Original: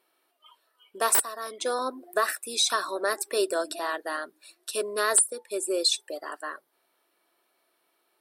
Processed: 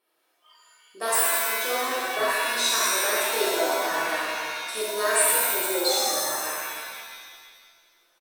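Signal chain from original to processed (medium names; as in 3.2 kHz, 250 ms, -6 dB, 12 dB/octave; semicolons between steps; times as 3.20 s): frequency-shifting echo 260 ms, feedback 34%, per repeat -120 Hz, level -20.5 dB; pitch-shifted reverb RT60 1.6 s, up +7 st, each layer -2 dB, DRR -7 dB; trim -7 dB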